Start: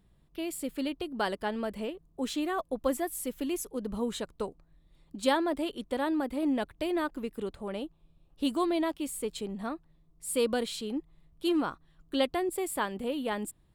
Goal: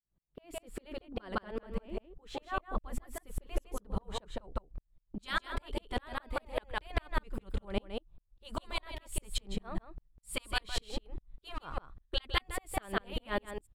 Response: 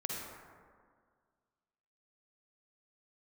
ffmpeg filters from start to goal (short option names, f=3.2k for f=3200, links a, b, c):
-af "agate=range=-19dB:threshold=-53dB:ratio=16:detection=peak,asetnsamples=n=441:p=0,asendcmd='5.19 lowpass f 3800',lowpass=f=1.3k:p=1,afftfilt=real='re*lt(hypot(re,im),0.158)':imag='im*lt(hypot(re,im),0.158)':win_size=1024:overlap=0.75,asubboost=boost=7.5:cutoff=78,aecho=1:1:159:0.668,aeval=exprs='val(0)*pow(10,-39*if(lt(mod(-5*n/s,1),2*abs(-5)/1000),1-mod(-5*n/s,1)/(2*abs(-5)/1000),(mod(-5*n/s,1)-2*abs(-5)/1000)/(1-2*abs(-5)/1000))/20)':c=same,volume=10dB"